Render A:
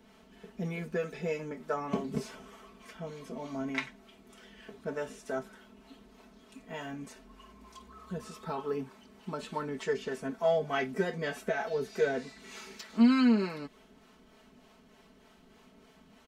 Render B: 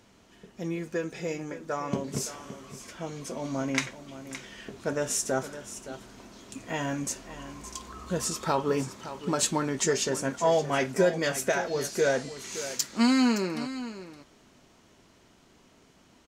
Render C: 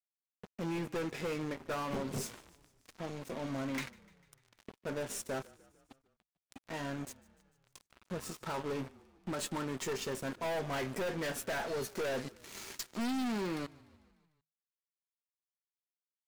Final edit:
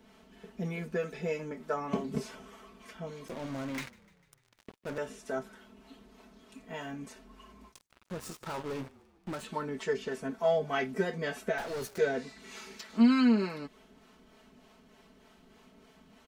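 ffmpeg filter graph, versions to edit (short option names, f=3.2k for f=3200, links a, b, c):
-filter_complex "[2:a]asplit=3[a][b][c];[0:a]asplit=4[d][e][f][g];[d]atrim=end=3.282[h];[a]atrim=start=3.278:end=4.982[i];[e]atrim=start=4.978:end=7.75[j];[b]atrim=start=7.65:end=9.46[k];[f]atrim=start=9.36:end=11.582[l];[c]atrim=start=11.578:end=11.982[m];[g]atrim=start=11.978[n];[h][i]acrossfade=d=0.004:c1=hsin:c2=hsin[o];[o][j]acrossfade=d=0.004:c1=hsin:c2=hsin[p];[p][k]acrossfade=d=0.1:c1=tri:c2=tri[q];[q][l]acrossfade=d=0.1:c1=tri:c2=tri[r];[r][m]acrossfade=d=0.004:c1=hsin:c2=hsin[s];[s][n]acrossfade=d=0.004:c1=hsin:c2=hsin"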